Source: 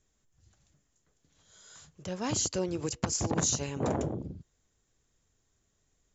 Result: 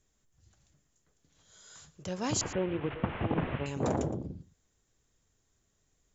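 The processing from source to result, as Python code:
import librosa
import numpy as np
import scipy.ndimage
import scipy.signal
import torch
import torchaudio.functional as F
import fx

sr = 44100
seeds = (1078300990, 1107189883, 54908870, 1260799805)

p1 = fx.delta_mod(x, sr, bps=16000, step_db=-36.5, at=(2.41, 3.66))
y = p1 + fx.echo_single(p1, sr, ms=115, db=-17.5, dry=0)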